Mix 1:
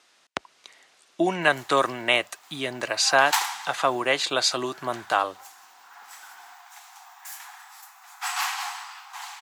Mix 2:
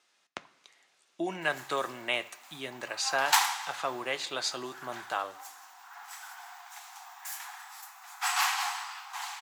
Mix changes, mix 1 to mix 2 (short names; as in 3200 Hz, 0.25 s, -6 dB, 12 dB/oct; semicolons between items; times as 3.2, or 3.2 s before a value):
speech -12.0 dB; reverb: on, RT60 1.0 s